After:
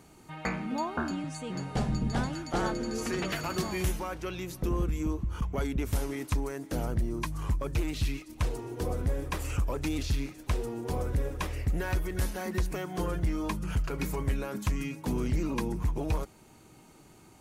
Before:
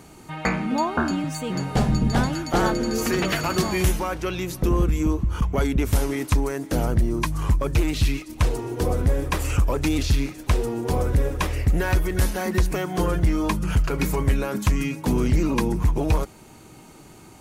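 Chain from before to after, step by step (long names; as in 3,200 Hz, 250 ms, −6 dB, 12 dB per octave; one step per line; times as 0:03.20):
0:01.10–0:03.32: low-pass filter 11,000 Hz 24 dB per octave
level −9 dB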